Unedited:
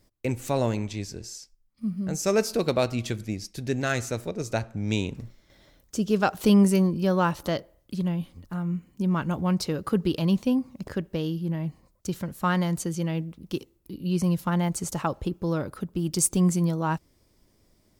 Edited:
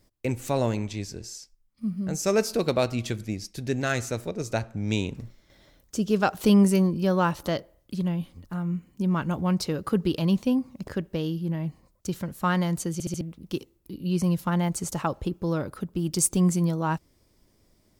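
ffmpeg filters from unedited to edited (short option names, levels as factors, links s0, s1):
-filter_complex "[0:a]asplit=5[s0][s1][s2][s3][s4];[s0]atrim=end=13.002[s5];[s1]atrim=start=12.928:end=13.002[s6];[s2]atrim=start=12.928:end=13.002[s7];[s3]atrim=start=12.928:end=13.002[s8];[s4]atrim=start=13.208[s9];[s5][s6]acrossfade=d=0.004:c1=hsin:c2=hsin[s10];[s10][s7]acrossfade=d=0.004:c1=hsin:c2=hsin[s11];[s11][s8]acrossfade=d=0.004:c1=hsin:c2=hsin[s12];[s12][s9]acrossfade=d=0.004:c1=hsin:c2=hsin"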